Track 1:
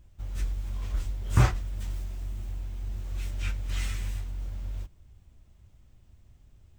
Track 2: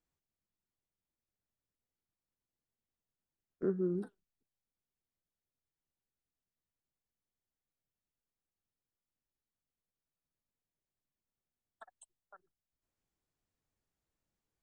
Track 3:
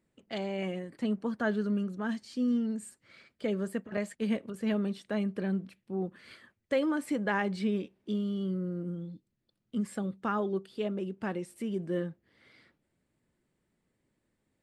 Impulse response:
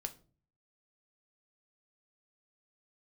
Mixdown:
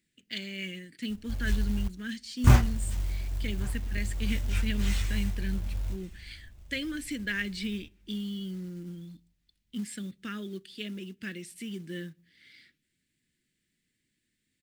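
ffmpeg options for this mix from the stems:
-filter_complex "[0:a]equalizer=f=65:w=2:g=4,bandreject=f=1.3k:w=19,adelay=1100,volume=-1dB,asplit=3[a][b][c];[a]atrim=end=1.88,asetpts=PTS-STARTPTS,afade=t=out:st=1.876:d=0.004:c=hsin[d];[b]atrim=start=1.88:end=2.44,asetpts=PTS-STARTPTS,volume=0[e];[c]atrim=start=2.44,asetpts=PTS-STARTPTS,afade=t=in:d=0.004:c=hsin[f];[d][e][f]concat=n=3:v=0:a=1,asplit=3[g][h][i];[h]volume=-8.5dB[j];[i]volume=-21dB[k];[2:a]firequalizer=gain_entry='entry(130,0);entry(260,2);entry(810,-24);entry(1700,8);entry(3300,13);entry(11000,10)':delay=0.05:min_phase=1,volume=-6.5dB,asplit=2[l][m];[m]volume=-10dB[n];[3:a]atrim=start_sample=2205[o];[j][n]amix=inputs=2:normalize=0[p];[p][o]afir=irnorm=-1:irlink=0[q];[k]aecho=0:1:1140|2280|3420|4560|5700:1|0.33|0.109|0.0359|0.0119[r];[g][l][q][r]amix=inputs=4:normalize=0,acrusher=bits=6:mode=log:mix=0:aa=0.000001"

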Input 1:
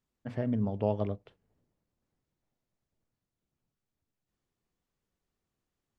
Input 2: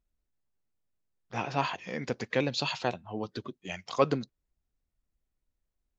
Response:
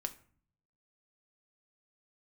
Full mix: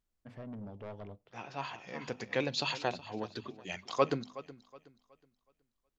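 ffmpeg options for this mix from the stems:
-filter_complex "[0:a]asoftclip=type=tanh:threshold=-29dB,volume=-8.5dB,asplit=3[a][b][c];[b]volume=-22dB[d];[1:a]bandreject=f=50:t=h:w=6,bandreject=f=100:t=h:w=6,bandreject=f=150:t=h:w=6,bandreject=f=200:t=h:w=6,bandreject=f=250:t=h:w=6,volume=-3dB,asplit=3[e][f][g];[f]volume=-15dB[h];[g]volume=-16dB[i];[c]apad=whole_len=264062[j];[e][j]sidechaincompress=threshold=-56dB:ratio=8:attack=16:release=1250[k];[2:a]atrim=start_sample=2205[l];[d][h]amix=inputs=2:normalize=0[m];[m][l]afir=irnorm=-1:irlink=0[n];[i]aecho=0:1:370|740|1110|1480|1850:1|0.33|0.109|0.0359|0.0119[o];[a][k][n][o]amix=inputs=4:normalize=0,lowshelf=f=470:g=-3"

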